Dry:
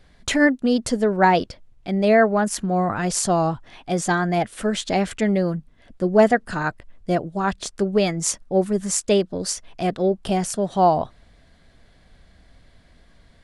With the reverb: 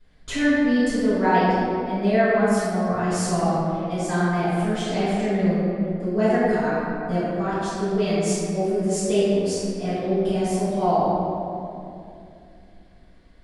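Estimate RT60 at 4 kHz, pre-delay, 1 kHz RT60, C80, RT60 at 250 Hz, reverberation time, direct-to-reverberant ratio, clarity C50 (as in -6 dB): 1.4 s, 5 ms, 2.3 s, -2.0 dB, 3.4 s, 2.6 s, -15.5 dB, -4.0 dB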